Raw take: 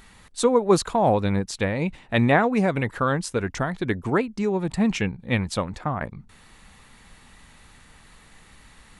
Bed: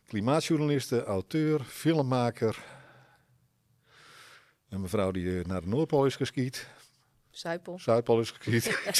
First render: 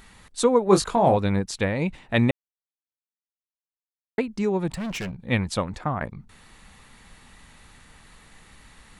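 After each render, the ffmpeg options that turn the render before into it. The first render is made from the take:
-filter_complex "[0:a]asettb=1/sr,asplit=3[s0][s1][s2];[s0]atrim=end=0.654[s3];[s1]atrim=start=0.65:end=1.17,asetpts=PTS-STARTPTS,afade=t=in:d=0.004:c=qsin,afade=t=out:st=0.516:d=0.004:c=qsin,asplit=2[s4][s5];[s5]adelay=21,volume=0.501[s6];[s4][s6]amix=inputs=2:normalize=0,atrim=end_sample=22932[s7];[s2]atrim=start=1.166[s8];[s3][s7]acrossfade=d=0.004:c1=hsin:c2=qsin[s9];[s9][s8]acrossfade=d=0.004:c1=qsin:c2=hsin,asettb=1/sr,asplit=3[s10][s11][s12];[s10]atrim=end=4.704[s13];[s11]atrim=start=4.7:end=5.15,asetpts=PTS-STARTPTS,afade=t=in:d=0.004:c=qsin,afade=t=out:st=0.446:d=0.004:c=qsin,asoftclip=type=hard:threshold=0.0398[s14];[s12]atrim=start=5.146[s15];[s13][s14]acrossfade=d=0.004:c1=hsin:c2=qsin[s16];[s16][s15]acrossfade=d=0.004:c1=qsin:c2=hsin,asplit=3[s17][s18][s19];[s17]atrim=end=2.31,asetpts=PTS-STARTPTS,afade=t=out:st=2.306:d=0.004:c=hsin[s20];[s18]atrim=start=2.31:end=4.18,asetpts=PTS-STARTPTS,volume=0[s21];[s19]atrim=start=4.18,asetpts=PTS-STARTPTS,afade=t=in:d=0.004:c=hsin[s22];[s20][s21][s22]concat=n=3:v=0:a=1"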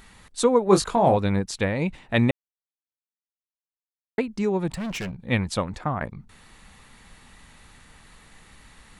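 -af anull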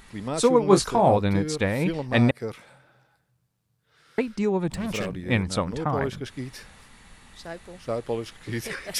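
-filter_complex "[1:a]volume=0.631[s0];[0:a][s0]amix=inputs=2:normalize=0"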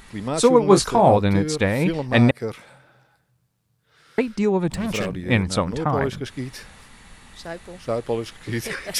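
-af "volume=1.58,alimiter=limit=0.891:level=0:latency=1"

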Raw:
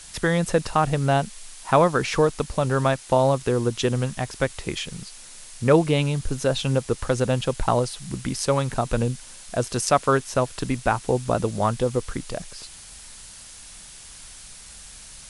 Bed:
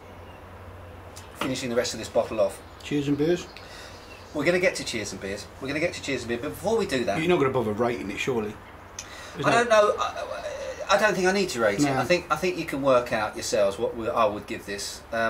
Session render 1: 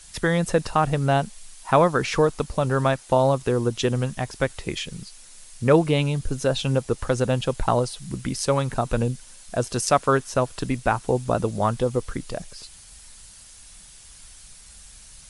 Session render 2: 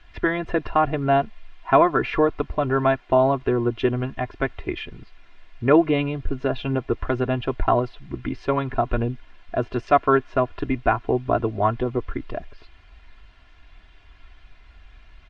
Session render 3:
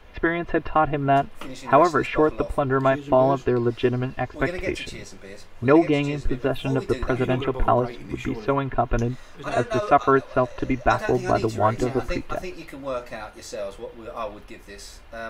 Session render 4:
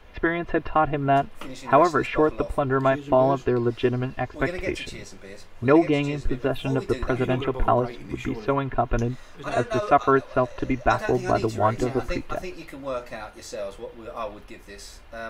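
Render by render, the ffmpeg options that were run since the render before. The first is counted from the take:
-af "afftdn=nr=6:nf=-44"
-af "lowpass=f=2700:w=0.5412,lowpass=f=2700:w=1.3066,aecho=1:1:2.9:0.73"
-filter_complex "[1:a]volume=0.355[s0];[0:a][s0]amix=inputs=2:normalize=0"
-af "volume=0.891"

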